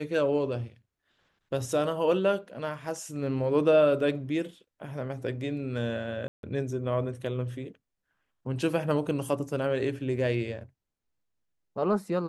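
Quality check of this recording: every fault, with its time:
0:06.28–0:06.43: drop-out 152 ms

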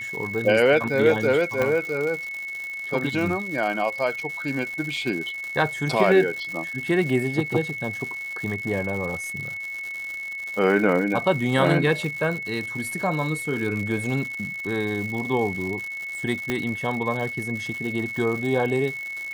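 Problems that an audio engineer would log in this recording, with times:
surface crackle 180 per second −30 dBFS
whistle 2,200 Hz −30 dBFS
0:01.62: click −11 dBFS
0:16.50: click −11 dBFS

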